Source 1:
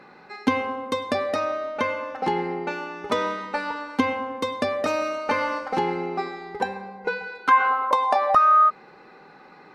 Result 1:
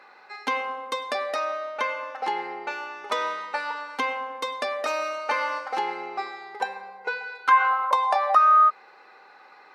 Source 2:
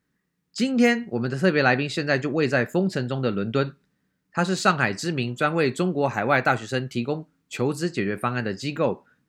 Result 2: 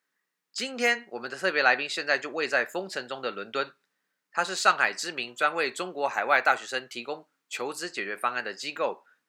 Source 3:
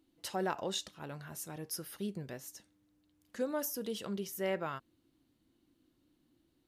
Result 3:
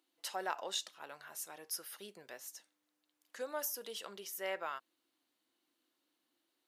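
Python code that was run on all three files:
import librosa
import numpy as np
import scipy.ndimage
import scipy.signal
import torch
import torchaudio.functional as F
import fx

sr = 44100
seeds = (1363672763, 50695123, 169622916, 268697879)

y = scipy.signal.sosfilt(scipy.signal.butter(2, 670.0, 'highpass', fs=sr, output='sos'), x)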